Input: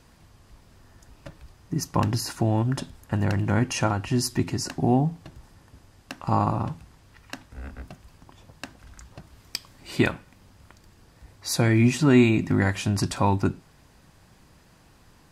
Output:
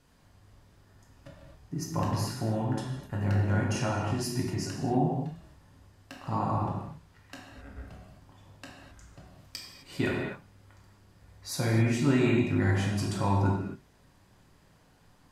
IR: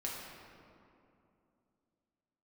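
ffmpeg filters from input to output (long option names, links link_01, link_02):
-filter_complex "[1:a]atrim=start_sample=2205,afade=type=out:start_time=0.26:duration=0.01,atrim=end_sample=11907,asetrate=33957,aresample=44100[link_01];[0:a][link_01]afir=irnorm=-1:irlink=0,volume=-8dB"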